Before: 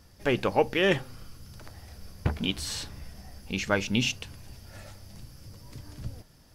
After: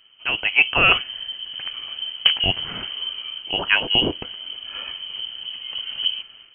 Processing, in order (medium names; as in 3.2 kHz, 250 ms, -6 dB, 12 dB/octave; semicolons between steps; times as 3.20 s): frequency inversion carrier 3.1 kHz; level rider gain up to 12 dB